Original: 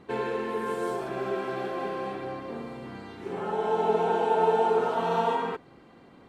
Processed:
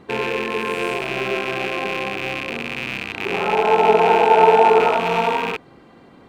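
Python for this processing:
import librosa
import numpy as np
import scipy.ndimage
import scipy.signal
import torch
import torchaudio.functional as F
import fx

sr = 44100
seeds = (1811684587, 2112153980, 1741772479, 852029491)

y = fx.rattle_buzz(x, sr, strikes_db=-46.0, level_db=-20.0)
y = fx.peak_eq(y, sr, hz=830.0, db=6.0, octaves=2.1, at=(3.14, 4.97))
y = F.gain(torch.from_numpy(y), 6.0).numpy()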